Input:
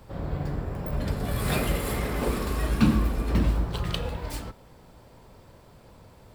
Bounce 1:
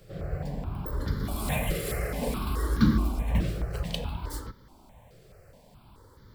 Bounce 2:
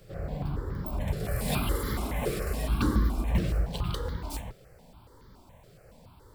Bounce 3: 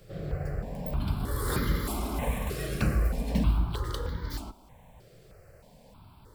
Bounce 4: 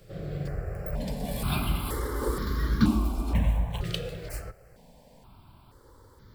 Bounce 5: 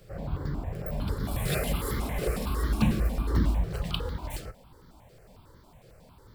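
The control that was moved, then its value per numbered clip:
step-sequenced phaser, speed: 4.7, 7.1, 3.2, 2.1, 11 Hertz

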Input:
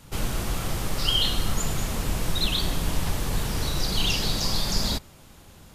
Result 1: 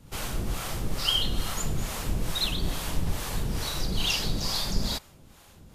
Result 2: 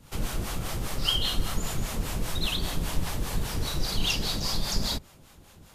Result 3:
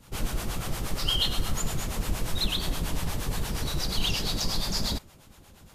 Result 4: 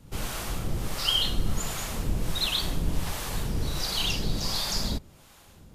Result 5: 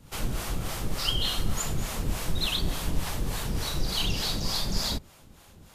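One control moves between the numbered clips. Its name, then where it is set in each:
two-band tremolo in antiphase, speed: 2.3, 5, 8.5, 1.4, 3.4 Hertz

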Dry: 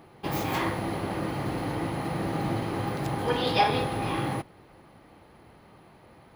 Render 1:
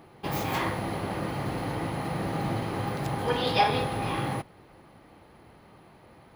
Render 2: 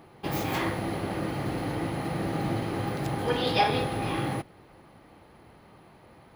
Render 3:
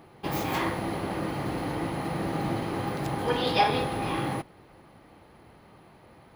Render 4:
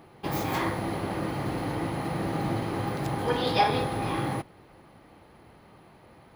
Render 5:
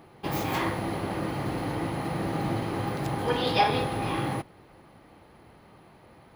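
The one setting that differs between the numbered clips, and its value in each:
dynamic equaliser, frequency: 320, 1,000, 110, 2,800, 8,300 Hertz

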